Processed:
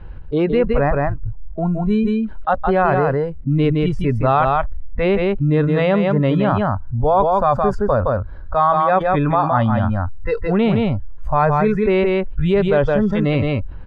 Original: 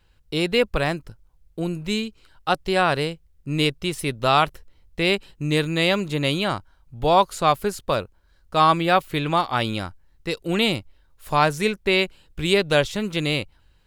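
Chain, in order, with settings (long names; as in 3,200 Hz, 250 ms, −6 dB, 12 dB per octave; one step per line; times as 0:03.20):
noise reduction from a noise print of the clip's start 19 dB
low-pass filter 1,500 Hz 12 dB per octave
spectral tilt −1.5 dB per octave
on a send: single-tap delay 167 ms −6.5 dB
on the sum: envelope flattener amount 70%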